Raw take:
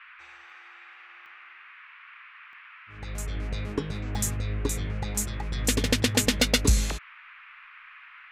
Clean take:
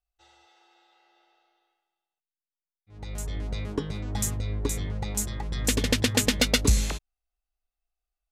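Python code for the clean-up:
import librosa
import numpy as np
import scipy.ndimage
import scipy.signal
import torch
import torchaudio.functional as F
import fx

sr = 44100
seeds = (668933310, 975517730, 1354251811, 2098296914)

y = fx.fix_interpolate(x, sr, at_s=(0.5, 1.26, 2.53, 4.15, 5.86), length_ms=1.7)
y = fx.noise_reduce(y, sr, print_start_s=1.53, print_end_s=2.03, reduce_db=30.0)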